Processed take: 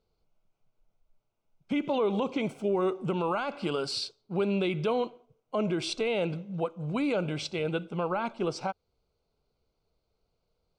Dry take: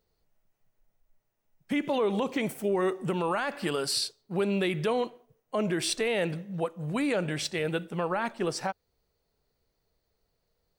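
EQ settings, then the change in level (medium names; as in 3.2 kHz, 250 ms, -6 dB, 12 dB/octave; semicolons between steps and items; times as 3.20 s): Butterworth band-stop 1.8 kHz, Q 3.3; distance through air 130 m; treble shelf 6.5 kHz +4.5 dB; 0.0 dB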